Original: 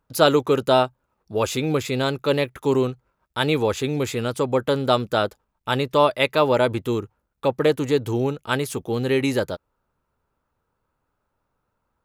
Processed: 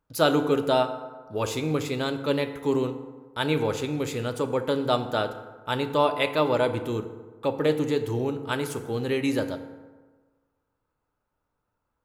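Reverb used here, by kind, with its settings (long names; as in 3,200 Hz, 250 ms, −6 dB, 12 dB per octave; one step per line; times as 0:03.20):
feedback delay network reverb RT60 1.4 s, low-frequency decay 0.95×, high-frequency decay 0.5×, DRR 7.5 dB
level −5.5 dB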